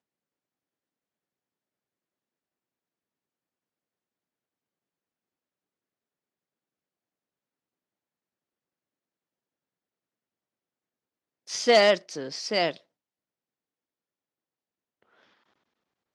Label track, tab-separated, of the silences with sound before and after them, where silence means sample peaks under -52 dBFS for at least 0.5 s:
12.810000	15.020000	silence